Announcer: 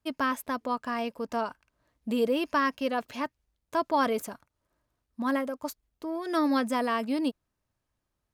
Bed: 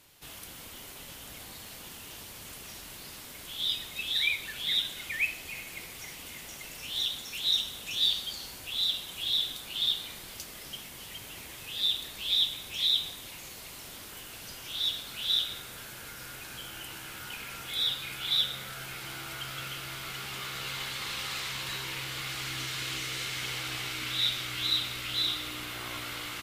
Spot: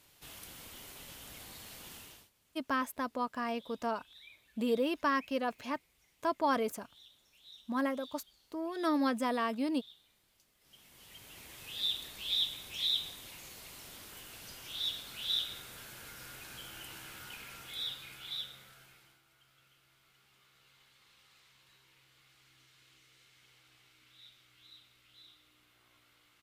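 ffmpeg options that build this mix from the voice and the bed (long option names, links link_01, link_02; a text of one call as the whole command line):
ffmpeg -i stem1.wav -i stem2.wav -filter_complex "[0:a]adelay=2500,volume=-4.5dB[link_01];[1:a]volume=18dB,afade=type=out:start_time=1.97:duration=0.33:silence=0.0668344,afade=type=in:start_time=10.59:duration=1.1:silence=0.0749894,afade=type=out:start_time=16.98:duration=2.23:silence=0.0630957[link_02];[link_01][link_02]amix=inputs=2:normalize=0" out.wav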